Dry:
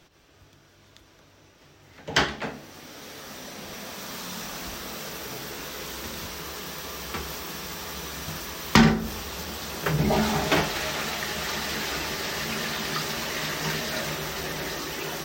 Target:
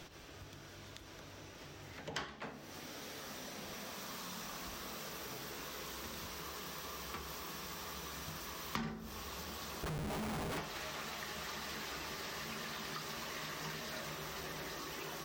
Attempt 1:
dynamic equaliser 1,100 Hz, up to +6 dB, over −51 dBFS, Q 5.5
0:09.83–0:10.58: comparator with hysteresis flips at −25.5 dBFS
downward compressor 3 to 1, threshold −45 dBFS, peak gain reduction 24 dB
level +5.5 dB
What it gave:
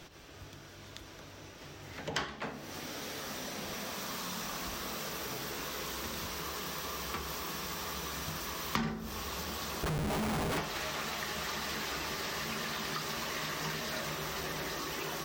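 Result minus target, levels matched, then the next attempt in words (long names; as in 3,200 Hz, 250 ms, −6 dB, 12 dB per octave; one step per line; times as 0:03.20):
downward compressor: peak gain reduction −6.5 dB
dynamic equaliser 1,100 Hz, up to +6 dB, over −51 dBFS, Q 5.5
0:09.83–0:10.58: comparator with hysteresis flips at −25.5 dBFS
downward compressor 3 to 1, threshold −55 dBFS, peak gain reduction 31 dB
level +5.5 dB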